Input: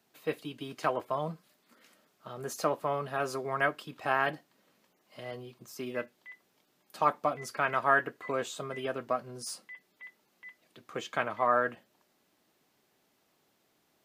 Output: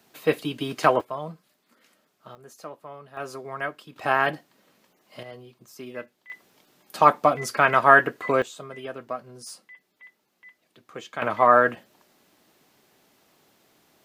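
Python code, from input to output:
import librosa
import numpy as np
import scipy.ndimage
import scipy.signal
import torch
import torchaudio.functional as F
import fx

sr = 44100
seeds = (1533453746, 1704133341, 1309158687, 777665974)

y = fx.gain(x, sr, db=fx.steps((0.0, 11.0), (1.01, 0.0), (2.35, -10.0), (3.17, -2.0), (3.96, 6.5), (5.23, -1.0), (6.3, 10.5), (8.42, -1.0), (11.22, 10.0)))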